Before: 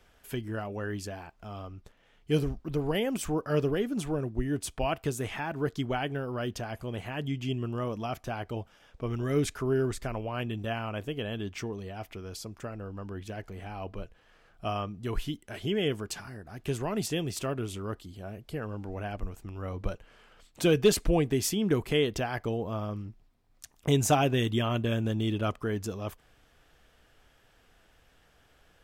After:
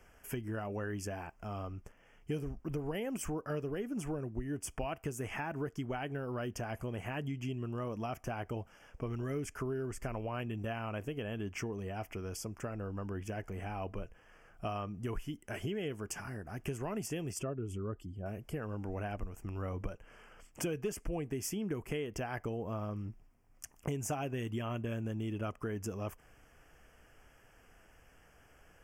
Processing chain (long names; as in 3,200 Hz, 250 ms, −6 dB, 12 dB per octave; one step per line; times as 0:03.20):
0:17.33–0:18.26: expanding power law on the bin magnitudes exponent 1.5
downward compressor 5 to 1, threshold −36 dBFS, peak gain reduction 17 dB
Butterworth band-reject 3,900 Hz, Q 1.8
level +1 dB